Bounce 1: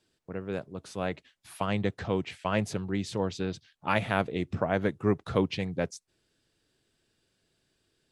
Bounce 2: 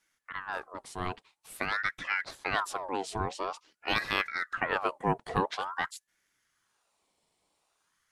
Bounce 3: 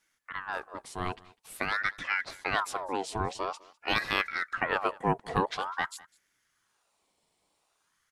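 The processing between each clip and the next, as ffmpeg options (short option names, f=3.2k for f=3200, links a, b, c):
-af "equalizer=f=9k:w=2.5:g=8.5,aeval=exprs='val(0)*sin(2*PI*1200*n/s+1200*0.55/0.48*sin(2*PI*0.48*n/s))':c=same"
-af "aecho=1:1:202:0.0708,volume=1dB"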